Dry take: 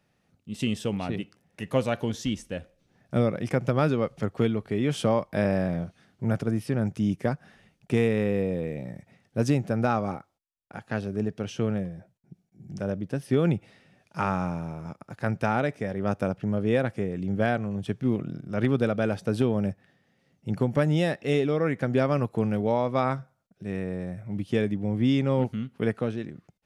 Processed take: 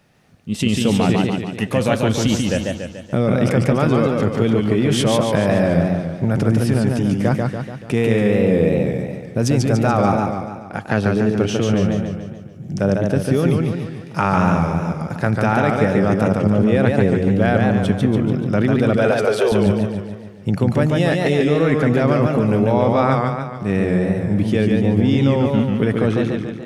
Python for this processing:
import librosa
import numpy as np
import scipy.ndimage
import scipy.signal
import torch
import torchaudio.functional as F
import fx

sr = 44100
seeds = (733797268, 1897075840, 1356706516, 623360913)

p1 = fx.steep_highpass(x, sr, hz=380.0, slope=72, at=(18.96, 19.52))
p2 = fx.over_compress(p1, sr, threshold_db=-28.0, ratio=-0.5)
p3 = p1 + F.gain(torch.from_numpy(p2), 2.5).numpy()
p4 = fx.echo_warbled(p3, sr, ms=144, feedback_pct=53, rate_hz=2.8, cents=118, wet_db=-3.0)
y = F.gain(torch.from_numpy(p4), 3.0).numpy()